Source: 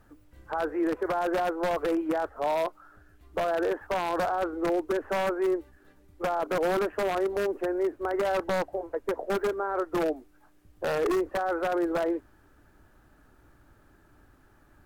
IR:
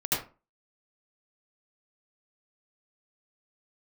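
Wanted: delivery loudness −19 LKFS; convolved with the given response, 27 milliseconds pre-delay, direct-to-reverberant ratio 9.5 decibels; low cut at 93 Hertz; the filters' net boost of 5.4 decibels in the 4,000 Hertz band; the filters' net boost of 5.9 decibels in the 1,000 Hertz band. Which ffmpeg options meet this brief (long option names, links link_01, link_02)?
-filter_complex "[0:a]highpass=93,equalizer=frequency=1000:width_type=o:gain=8,equalizer=frequency=4000:width_type=o:gain=6.5,asplit=2[link_01][link_02];[1:a]atrim=start_sample=2205,adelay=27[link_03];[link_02][link_03]afir=irnorm=-1:irlink=0,volume=-19dB[link_04];[link_01][link_04]amix=inputs=2:normalize=0,volume=6.5dB"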